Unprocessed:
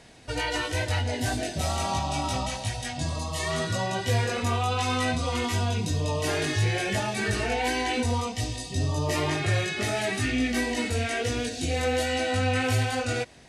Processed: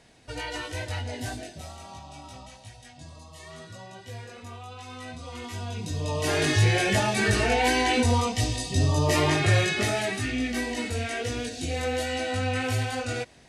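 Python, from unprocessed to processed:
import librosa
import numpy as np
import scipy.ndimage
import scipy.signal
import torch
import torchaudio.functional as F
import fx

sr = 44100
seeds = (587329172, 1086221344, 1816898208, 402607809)

y = fx.gain(x, sr, db=fx.line((1.26, -5.5), (1.78, -15.5), (4.86, -15.5), (5.66, -8.0), (6.48, 4.0), (9.72, 4.0), (10.22, -2.5)))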